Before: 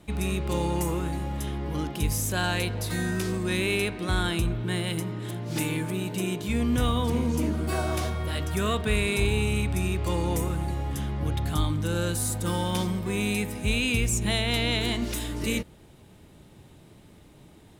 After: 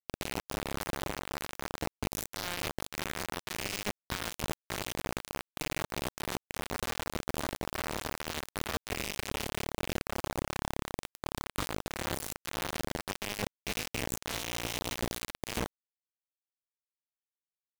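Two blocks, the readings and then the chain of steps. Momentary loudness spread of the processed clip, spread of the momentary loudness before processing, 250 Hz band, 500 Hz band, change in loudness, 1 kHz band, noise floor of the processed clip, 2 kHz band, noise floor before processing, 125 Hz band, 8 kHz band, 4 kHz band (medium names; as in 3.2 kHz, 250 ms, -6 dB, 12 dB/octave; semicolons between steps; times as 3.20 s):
4 LU, 6 LU, -13.0 dB, -9.0 dB, -9.5 dB, -5.0 dB, under -85 dBFS, -7.0 dB, -53 dBFS, -15.5 dB, -6.0 dB, -6.5 dB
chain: low-pass 2.4 kHz 6 dB/octave; hum notches 50/100/150/200/250/300/350/400/450 Hz; reverse; compression 12:1, threshold -41 dBFS, peak gain reduction 20 dB; reverse; short-mantissa float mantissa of 6-bit; in parallel at -12 dB: saturation -39 dBFS, distortion -18 dB; on the sum: bit crusher 6-bit; trim +8 dB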